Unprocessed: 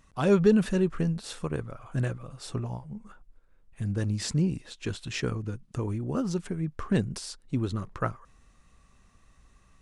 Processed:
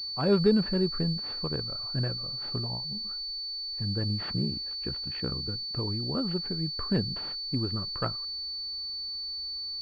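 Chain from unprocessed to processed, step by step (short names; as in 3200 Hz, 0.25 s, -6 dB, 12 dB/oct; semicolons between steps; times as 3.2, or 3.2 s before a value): 4.33–5.48 ring modulator 32 Hz; pulse-width modulation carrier 4500 Hz; gain -2 dB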